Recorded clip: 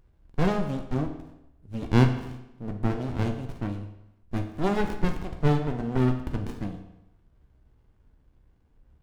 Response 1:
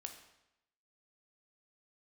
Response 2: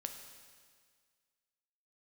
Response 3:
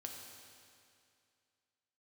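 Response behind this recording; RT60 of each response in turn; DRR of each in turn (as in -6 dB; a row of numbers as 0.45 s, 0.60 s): 1; 0.85 s, 1.8 s, 2.4 s; 4.5 dB, 5.0 dB, 1.0 dB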